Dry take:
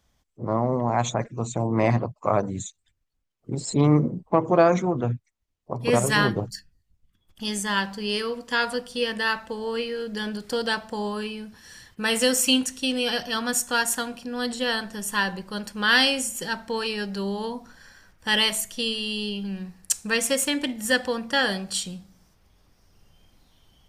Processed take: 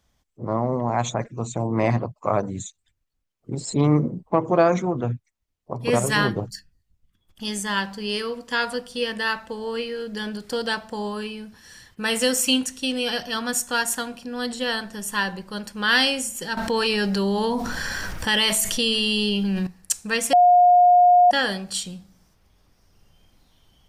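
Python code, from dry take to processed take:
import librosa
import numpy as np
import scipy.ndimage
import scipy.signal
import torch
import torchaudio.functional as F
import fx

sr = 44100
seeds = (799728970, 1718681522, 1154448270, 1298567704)

y = fx.env_flatten(x, sr, amount_pct=70, at=(16.57, 19.67))
y = fx.edit(y, sr, fx.bleep(start_s=20.33, length_s=0.98, hz=714.0, db=-10.5), tone=tone)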